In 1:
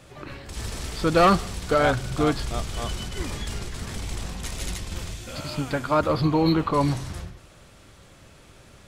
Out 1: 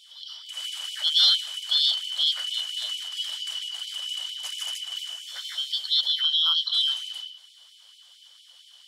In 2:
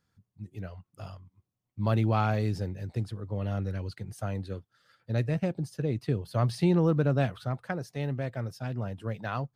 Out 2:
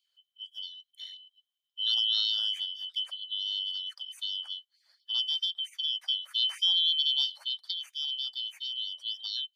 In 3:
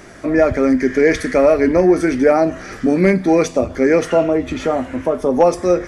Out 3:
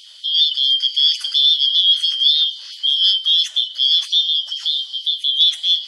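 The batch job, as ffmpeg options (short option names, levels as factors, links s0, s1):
-af "afftfilt=real='real(if(lt(b,272),68*(eq(floor(b/68),0)*2+eq(floor(b/68),1)*3+eq(floor(b/68),2)*0+eq(floor(b/68),3)*1)+mod(b,68),b),0)':imag='imag(if(lt(b,272),68*(eq(floor(b/68),0)*2+eq(floor(b/68),1)*3+eq(floor(b/68),2)*0+eq(floor(b/68),3)*1)+mod(b,68),b),0)':win_size=2048:overlap=0.75,tiltshelf=f=970:g=-3,afftfilt=real='re*gte(b*sr/1024,480*pow(2200/480,0.5+0.5*sin(2*PI*4.4*pts/sr)))':imag='im*gte(b*sr/1024,480*pow(2200/480,0.5+0.5*sin(2*PI*4.4*pts/sr)))':win_size=1024:overlap=0.75,volume=0.562"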